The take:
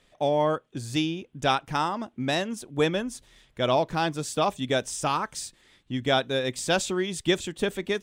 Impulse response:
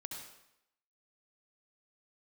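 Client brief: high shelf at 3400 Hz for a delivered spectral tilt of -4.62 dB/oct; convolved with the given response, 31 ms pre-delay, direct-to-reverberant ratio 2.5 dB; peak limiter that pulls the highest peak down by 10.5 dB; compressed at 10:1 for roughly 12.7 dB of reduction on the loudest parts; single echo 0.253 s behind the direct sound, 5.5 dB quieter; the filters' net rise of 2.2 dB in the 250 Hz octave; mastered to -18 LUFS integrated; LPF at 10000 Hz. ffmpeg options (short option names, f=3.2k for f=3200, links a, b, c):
-filter_complex "[0:a]lowpass=10k,equalizer=f=250:t=o:g=3,highshelf=f=3.4k:g=-5.5,acompressor=threshold=-30dB:ratio=10,alimiter=level_in=5.5dB:limit=-24dB:level=0:latency=1,volume=-5.5dB,aecho=1:1:253:0.531,asplit=2[a][b];[1:a]atrim=start_sample=2205,adelay=31[c];[b][c]afir=irnorm=-1:irlink=0,volume=-0.5dB[d];[a][d]amix=inputs=2:normalize=0,volume=19dB"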